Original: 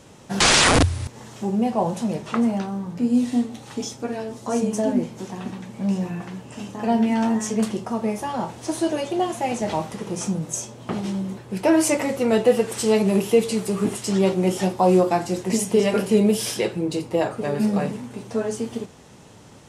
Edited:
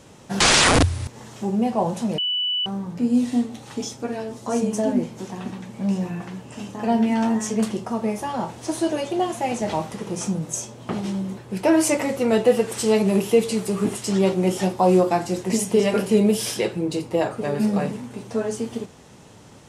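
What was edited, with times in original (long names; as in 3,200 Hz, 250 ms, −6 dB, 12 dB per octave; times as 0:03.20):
0:02.18–0:02.66: beep over 2,970 Hz −20.5 dBFS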